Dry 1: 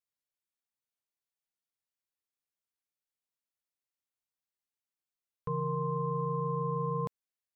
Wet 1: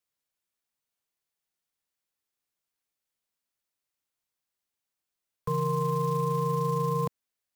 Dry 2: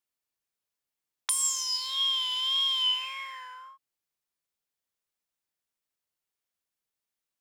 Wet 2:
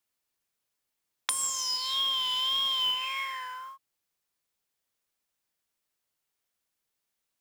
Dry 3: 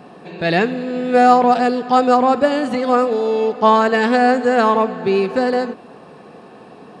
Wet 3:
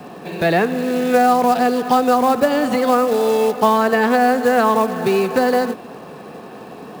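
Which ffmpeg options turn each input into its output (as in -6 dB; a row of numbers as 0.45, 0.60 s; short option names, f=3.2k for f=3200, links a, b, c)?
-filter_complex "[0:a]acrusher=bits=5:mode=log:mix=0:aa=0.000001,acrossover=split=220|540|1600[a][b][c][d];[a]acompressor=threshold=-31dB:ratio=4[e];[b]acompressor=threshold=-27dB:ratio=4[f];[c]acompressor=threshold=-21dB:ratio=4[g];[d]acompressor=threshold=-34dB:ratio=4[h];[e][f][g][h]amix=inputs=4:normalize=0,volume=5dB"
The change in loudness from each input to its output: +5.0, -1.5, -0.5 LU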